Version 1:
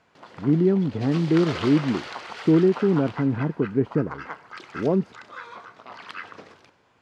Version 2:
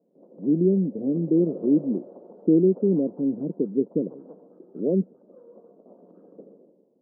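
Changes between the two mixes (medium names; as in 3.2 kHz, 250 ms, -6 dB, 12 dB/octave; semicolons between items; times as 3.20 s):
background: send +11.5 dB; master: add elliptic band-pass 180–550 Hz, stop band 60 dB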